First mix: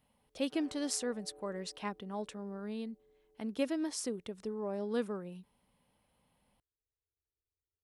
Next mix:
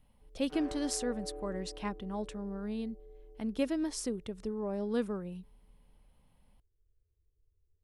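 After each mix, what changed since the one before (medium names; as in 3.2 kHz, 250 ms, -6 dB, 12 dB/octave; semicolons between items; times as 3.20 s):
background +10.5 dB; master: remove high-pass 250 Hz 6 dB/octave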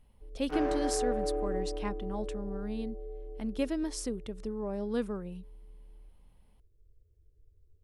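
background +11.5 dB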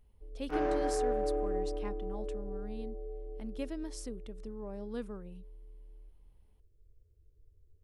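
speech -7.5 dB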